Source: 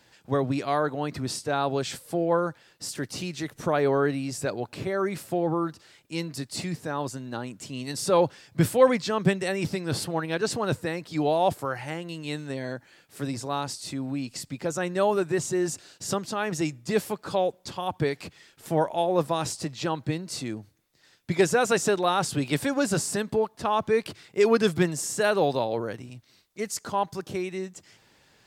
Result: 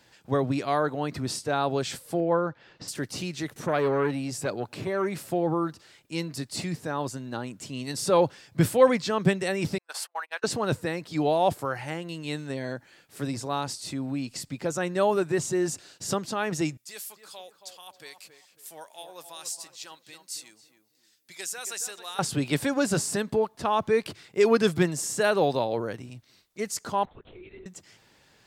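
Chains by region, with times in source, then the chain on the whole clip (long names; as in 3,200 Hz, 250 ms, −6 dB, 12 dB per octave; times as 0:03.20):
0:02.20–0:02.88: upward compression, threshold −27 dBFS + noise gate −41 dBFS, range −9 dB + high-frequency loss of the air 190 metres
0:03.56–0:05.31: high-pass filter 84 Hz 24 dB per octave + upward compression, threshold −38 dBFS + saturating transformer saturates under 570 Hz
0:09.78–0:10.44: high-pass filter 790 Hz 24 dB per octave + noise gate −38 dBFS, range −37 dB + parametric band 3,800 Hz −6 dB 0.65 octaves
0:16.77–0:22.19: first difference + feedback echo with a low-pass in the loop 274 ms, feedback 36%, low-pass 1,400 Hz, level −8 dB
0:27.05–0:27.66: downward compressor 20 to 1, threshold −41 dBFS + linear-phase brick-wall high-pass 260 Hz + linear-prediction vocoder at 8 kHz whisper
whole clip: no processing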